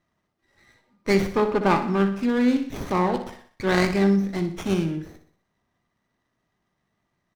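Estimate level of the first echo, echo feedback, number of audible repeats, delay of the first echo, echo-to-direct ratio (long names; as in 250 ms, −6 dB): −10.5 dB, 49%, 4, 61 ms, −9.5 dB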